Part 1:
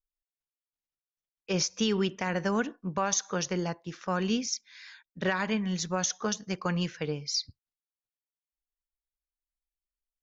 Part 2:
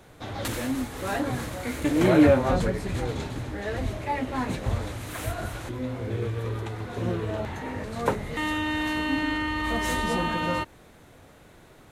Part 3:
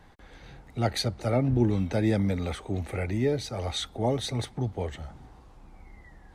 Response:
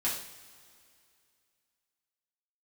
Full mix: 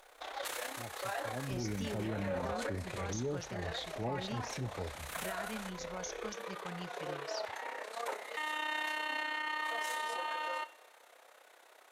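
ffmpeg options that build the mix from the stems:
-filter_complex "[0:a]acompressor=mode=upward:threshold=-37dB:ratio=2.5,volume=-15dB,asplit=2[link_01][link_02];[link_02]volume=-20.5dB[link_03];[1:a]tremolo=f=32:d=0.71,highpass=frequency=530:width=0.5412,highpass=frequency=530:width=1.3066,volume=-1.5dB,asplit=2[link_04][link_05];[link_05]volume=-21dB[link_06];[2:a]afwtdn=0.0141,flanger=delay=5:depth=4.4:regen=-81:speed=1.7:shape=triangular,volume=-5dB,afade=type=in:start_time=1.23:duration=0.67:silence=0.223872,asplit=2[link_07][link_08];[link_08]apad=whole_len=525372[link_09];[link_04][link_09]sidechaincompress=threshold=-42dB:ratio=8:attack=16:release=195[link_10];[3:a]atrim=start_sample=2205[link_11];[link_03][link_06]amix=inputs=2:normalize=0[link_12];[link_12][link_11]afir=irnorm=-1:irlink=0[link_13];[link_01][link_10][link_07][link_13]amix=inputs=4:normalize=0,alimiter=level_in=4.5dB:limit=-24dB:level=0:latency=1:release=17,volume=-4.5dB"

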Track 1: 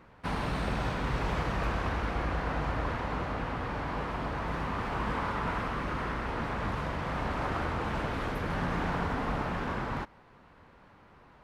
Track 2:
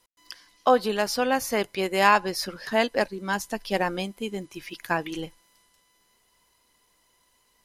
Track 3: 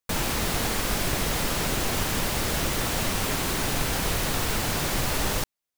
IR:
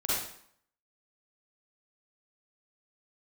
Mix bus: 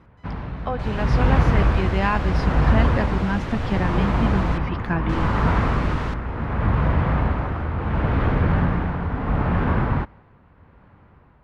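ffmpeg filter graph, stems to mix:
-filter_complex "[0:a]equalizer=frequency=77:width=0.44:gain=11,tremolo=f=0.72:d=0.62,volume=-0.5dB[link_01];[1:a]asubboost=boost=8.5:cutoff=200,acompressor=threshold=-51dB:ratio=1.5,volume=1.5dB[link_02];[2:a]adelay=700,volume=-13dB,asplit=3[link_03][link_04][link_05];[link_03]atrim=end=4.58,asetpts=PTS-STARTPTS,afade=type=out:start_time=4.576:duration=0.004:curve=hsin[link_06];[link_04]atrim=start=4.58:end=5.09,asetpts=PTS-STARTPTS,volume=0[link_07];[link_05]atrim=start=5.09,asetpts=PTS-STARTPTS,afade=type=in:duration=0.004:curve=hsin[link_08];[link_06][link_07][link_08]concat=n=3:v=0:a=1[link_09];[link_01][link_02][link_09]amix=inputs=3:normalize=0,lowpass=2600,dynaudnorm=framelen=140:gausssize=13:maxgain=9dB"

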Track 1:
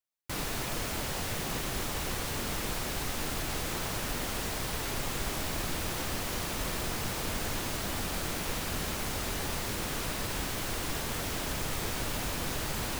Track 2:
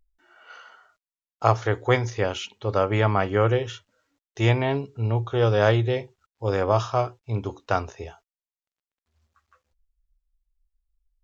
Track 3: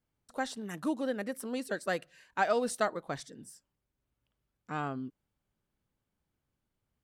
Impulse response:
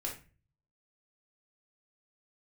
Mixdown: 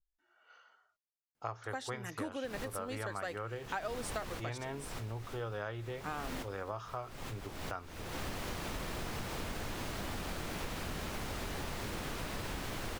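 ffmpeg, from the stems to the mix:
-filter_complex "[0:a]highshelf=frequency=4900:gain=-9,adelay=2150,volume=0dB[link_01];[1:a]adynamicequalizer=threshold=0.0112:dfrequency=1400:dqfactor=1.4:tfrequency=1400:tqfactor=1.4:attack=5:release=100:ratio=0.375:range=4:mode=boostabove:tftype=bell,volume=-16dB,asplit=2[link_02][link_03];[2:a]lowshelf=frequency=260:gain=-10.5,adelay=1350,volume=2dB[link_04];[link_03]apad=whole_len=667915[link_05];[link_01][link_05]sidechaincompress=threshold=-55dB:ratio=5:attack=11:release=225[link_06];[link_06][link_02][link_04]amix=inputs=3:normalize=0,acompressor=threshold=-36dB:ratio=5"

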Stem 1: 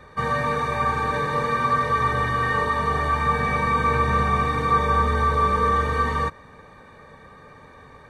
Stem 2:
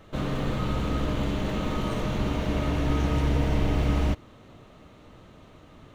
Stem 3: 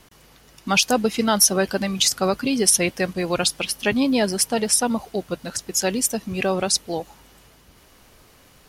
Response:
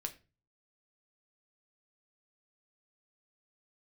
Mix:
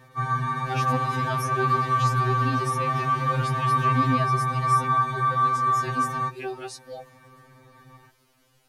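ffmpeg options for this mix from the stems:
-filter_complex "[0:a]equalizer=frequency=100:width_type=o:width=1.7:gain=7,volume=-5dB[link_01];[1:a]highpass=frequency=54:width=0.5412,highpass=frequency=54:width=1.3066,volume=-3.5dB[link_02];[2:a]volume=-9.5dB,asplit=2[link_03][link_04];[link_04]apad=whole_len=262095[link_05];[link_02][link_05]sidechaingate=range=-42dB:threshold=-53dB:ratio=16:detection=peak[link_06];[link_01][link_06][link_03]amix=inputs=3:normalize=0,acrossover=split=2600[link_07][link_08];[link_08]acompressor=threshold=-35dB:ratio=4:attack=1:release=60[link_09];[link_07][link_09]amix=inputs=2:normalize=0,afftfilt=real='re*2.45*eq(mod(b,6),0)':imag='im*2.45*eq(mod(b,6),0)':win_size=2048:overlap=0.75"

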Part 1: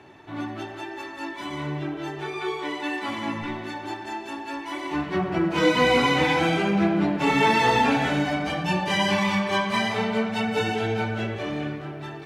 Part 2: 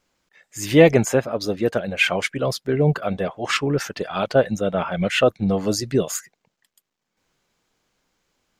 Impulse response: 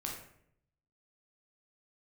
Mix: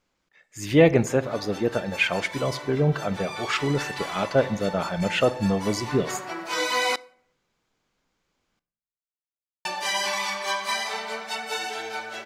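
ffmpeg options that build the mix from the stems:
-filter_complex "[0:a]highpass=680,aexciter=amount=3.8:drive=5.8:freq=4200,adelay=950,volume=-2dB,asplit=3[link_01][link_02][link_03];[link_01]atrim=end=6.96,asetpts=PTS-STARTPTS,afade=type=out:start_time=6.956:duration=0.004:curve=hsin[link_04];[link_02]atrim=start=6.96:end=9.65,asetpts=PTS-STARTPTS,volume=0[link_05];[link_03]atrim=start=9.65,asetpts=PTS-STARTPTS,afade=type=in:duration=0.004:curve=hsin[link_06];[link_04][link_05][link_06]concat=n=3:v=0:a=1,asplit=2[link_07][link_08];[link_08]volume=-19dB[link_09];[1:a]volume=-4.5dB,asplit=2[link_10][link_11];[link_11]volume=-12.5dB[link_12];[2:a]atrim=start_sample=2205[link_13];[link_09][link_12]amix=inputs=2:normalize=0[link_14];[link_14][link_13]afir=irnorm=-1:irlink=0[link_15];[link_07][link_10][link_15]amix=inputs=3:normalize=0,highshelf=frequency=6800:gain=-7.5"

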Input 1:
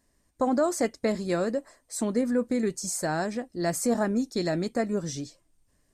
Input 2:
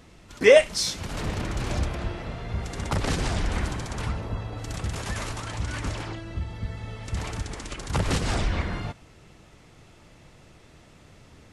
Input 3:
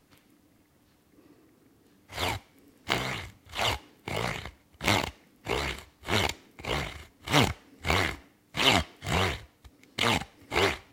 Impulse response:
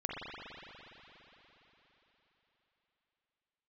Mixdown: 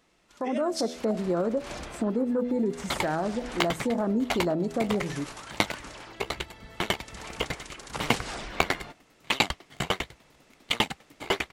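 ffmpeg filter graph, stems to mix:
-filter_complex "[0:a]afwtdn=0.0224,volume=-3.5dB,asplit=2[link_01][link_02];[1:a]lowshelf=frequency=220:gain=-11.5,volume=-10.5dB[link_03];[2:a]aeval=exprs='val(0)*pow(10,-37*if(lt(mod(10*n/s,1),2*abs(10)/1000),1-mod(10*n/s,1)/(2*abs(10)/1000),(mod(10*n/s,1)-2*abs(10)/1000)/(1-2*abs(10)/1000))/20)':channel_layout=same,adelay=700,volume=1.5dB[link_04];[link_02]apad=whole_len=508411[link_05];[link_03][link_05]sidechaincompress=threshold=-40dB:ratio=8:attack=29:release=111[link_06];[link_01][link_06]amix=inputs=2:normalize=0,bandreject=frequency=81.66:width_type=h:width=4,bandreject=frequency=163.32:width_type=h:width=4,bandreject=frequency=244.98:width_type=h:width=4,bandreject=frequency=326.64:width_type=h:width=4,bandreject=frequency=408.3:width_type=h:width=4,bandreject=frequency=489.96:width_type=h:width=4,bandreject=frequency=571.62:width_type=h:width=4,bandreject=frequency=653.28:width_type=h:width=4,bandreject=frequency=734.94:width_type=h:width=4,alimiter=level_in=1dB:limit=-24dB:level=0:latency=1:release=62,volume=-1dB,volume=0dB[link_07];[link_04][link_07]amix=inputs=2:normalize=0,equalizer=frequency=91:width=3.2:gain=-14.5,dynaudnorm=framelen=310:gausssize=3:maxgain=6.5dB"

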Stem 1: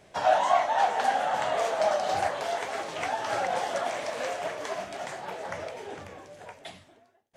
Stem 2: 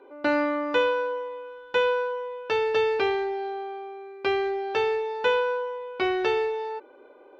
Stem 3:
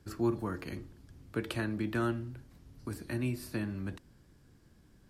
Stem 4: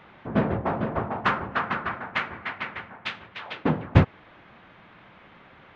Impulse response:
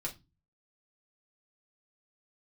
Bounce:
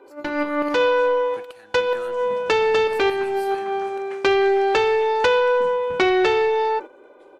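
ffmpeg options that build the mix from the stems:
-filter_complex "[0:a]lowpass=8700,aemphasis=mode=production:type=50fm,acompressor=threshold=-27dB:ratio=6,adelay=550,volume=-18dB[link_01];[1:a]acompressor=threshold=-26dB:ratio=6,aeval=exprs='0.2*sin(PI/2*2.24*val(0)/0.2)':channel_layout=same,volume=1.5dB,asplit=2[link_02][link_03];[link_03]volume=-15dB[link_04];[2:a]highpass=frequency=1400:poles=1,acrossover=split=2000[link_05][link_06];[link_05]aeval=exprs='val(0)*(1-0.5/2+0.5/2*cos(2*PI*6.6*n/s))':channel_layout=same[link_07];[link_06]aeval=exprs='val(0)*(1-0.5/2-0.5/2*cos(2*PI*6.6*n/s))':channel_layout=same[link_08];[link_07][link_08]amix=inputs=2:normalize=0,volume=2.5dB,asplit=2[link_09][link_10];[3:a]aecho=1:1:4.7:0.65,acompressor=threshold=-24dB:ratio=6,adelay=1950,volume=-17dB[link_11];[link_10]apad=whole_len=326213[link_12];[link_02][link_12]sidechaincompress=threshold=-49dB:ratio=6:attack=8.2:release=121[link_13];[4:a]atrim=start_sample=2205[link_14];[link_04][link_14]afir=irnorm=-1:irlink=0[link_15];[link_01][link_13][link_09][link_11][link_15]amix=inputs=5:normalize=0,agate=range=-10dB:threshold=-30dB:ratio=16:detection=peak"

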